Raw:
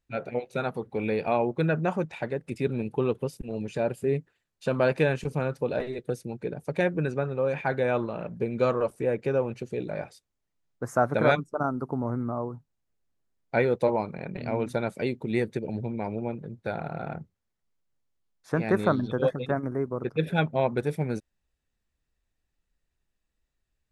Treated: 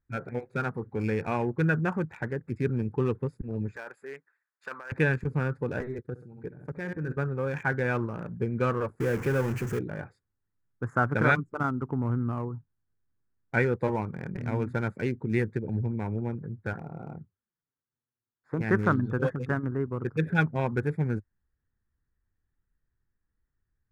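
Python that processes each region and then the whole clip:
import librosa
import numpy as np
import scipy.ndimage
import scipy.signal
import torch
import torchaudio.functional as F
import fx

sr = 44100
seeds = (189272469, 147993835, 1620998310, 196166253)

y = fx.chain(x, sr, fx.highpass(hz=1000.0, slope=12),
    fx.over_compress(threshold_db=-36.0, ratio=-1.0), at=(3.76, 4.92))
y = fx.chain(y, sr, fx.room_flutter(wall_m=11.3, rt60_s=0.45),
    fx.level_steps(step_db=16), at=(6.01, 7.18))
y = fx.chain(y, sr, fx.zero_step(step_db=-31.0),
    fx.doubler(ms=38.0, db=-13.0), at=(9.0, 9.79))
y = fx.chain(y, sr, fx.high_shelf(hz=3200.0, db=-6.5),
    fx.env_flanger(rest_ms=8.4, full_db=-30.5),
    fx.highpass(hz=220.0, slope=6), at=(16.73, 18.61))
y = fx.wiener(y, sr, points=15)
y = fx.graphic_eq_15(y, sr, hz=(100, 630, 1600, 4000), db=(8, -10, 7, -8))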